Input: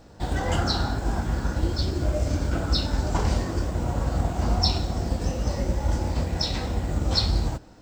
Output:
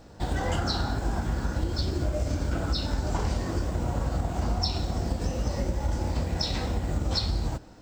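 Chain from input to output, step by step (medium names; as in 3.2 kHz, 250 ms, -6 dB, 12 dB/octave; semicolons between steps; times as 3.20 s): compression, threshold -23 dBFS, peak gain reduction 7 dB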